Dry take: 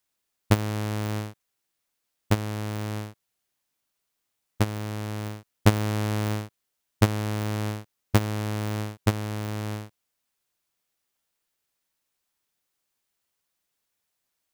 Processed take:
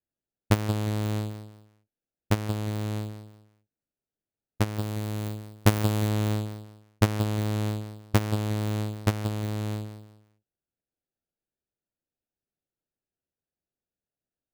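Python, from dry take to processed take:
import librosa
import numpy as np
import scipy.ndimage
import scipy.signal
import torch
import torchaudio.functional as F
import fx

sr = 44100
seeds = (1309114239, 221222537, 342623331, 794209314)

p1 = fx.wiener(x, sr, points=41)
p2 = fx.high_shelf(p1, sr, hz=9500.0, db=7.0, at=(4.78, 6.09))
p3 = p2 + fx.echo_feedback(p2, sr, ms=179, feedback_pct=29, wet_db=-10.5, dry=0)
y = F.gain(torch.from_numpy(p3), -1.5).numpy()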